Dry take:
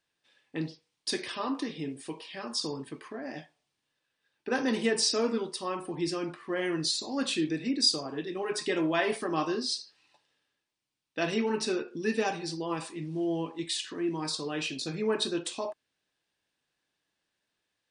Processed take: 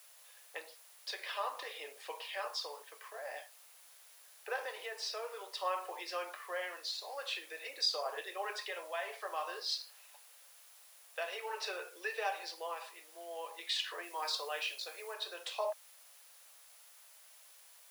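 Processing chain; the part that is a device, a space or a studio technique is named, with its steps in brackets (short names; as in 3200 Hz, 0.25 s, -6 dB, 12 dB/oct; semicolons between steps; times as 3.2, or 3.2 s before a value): medium wave at night (BPF 110–3600 Hz; compressor, threshold -31 dBFS, peak gain reduction 9 dB; tremolo 0.5 Hz, depth 53%; whine 10000 Hz -68 dBFS; white noise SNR 23 dB); steep high-pass 500 Hz 48 dB/oct; 14.03–15.14 high shelf 5600 Hz +5 dB; gain +3.5 dB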